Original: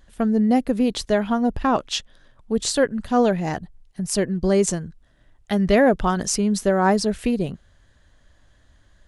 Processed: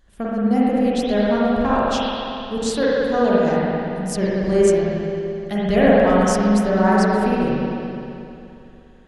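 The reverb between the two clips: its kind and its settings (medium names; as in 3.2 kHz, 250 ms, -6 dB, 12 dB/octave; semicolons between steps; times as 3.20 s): spring tank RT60 2.8 s, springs 43/58 ms, chirp 70 ms, DRR -7.5 dB; trim -5 dB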